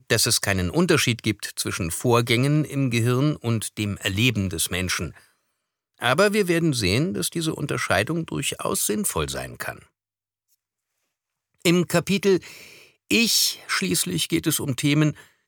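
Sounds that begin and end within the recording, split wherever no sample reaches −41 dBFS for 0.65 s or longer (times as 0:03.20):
0:05.99–0:09.83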